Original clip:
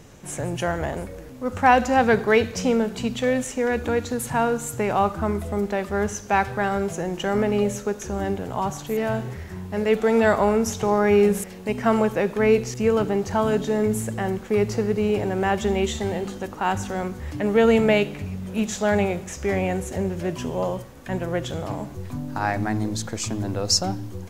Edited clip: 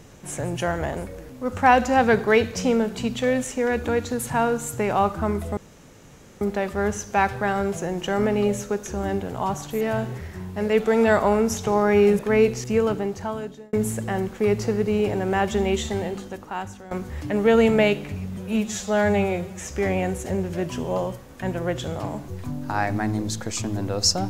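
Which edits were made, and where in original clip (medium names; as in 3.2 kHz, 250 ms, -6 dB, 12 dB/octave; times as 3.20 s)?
5.57 s: insert room tone 0.84 s
11.35–12.29 s: delete
12.82–13.83 s: fade out
16.01–17.01 s: fade out linear, to -16.5 dB
18.47–19.34 s: stretch 1.5×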